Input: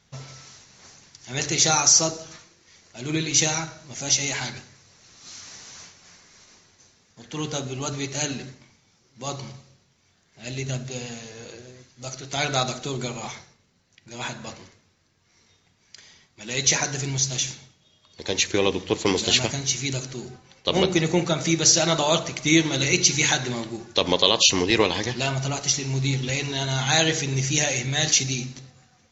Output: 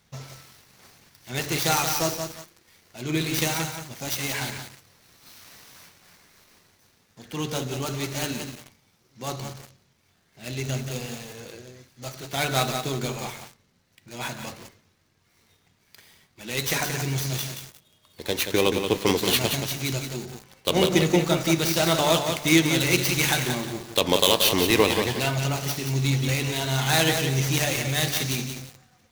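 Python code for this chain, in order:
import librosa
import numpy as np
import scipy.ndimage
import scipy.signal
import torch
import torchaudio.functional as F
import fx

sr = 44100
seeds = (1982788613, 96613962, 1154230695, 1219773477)

y = fx.dead_time(x, sr, dead_ms=0.067)
y = fx.echo_crushed(y, sr, ms=178, feedback_pct=35, bits=6, wet_db=-6.0)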